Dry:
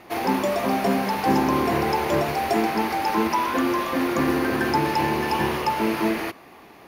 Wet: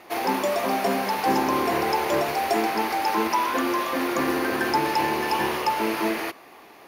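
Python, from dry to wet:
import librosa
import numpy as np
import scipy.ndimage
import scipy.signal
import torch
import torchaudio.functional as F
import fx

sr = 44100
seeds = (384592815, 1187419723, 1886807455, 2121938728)

y = fx.bass_treble(x, sr, bass_db=-10, treble_db=2)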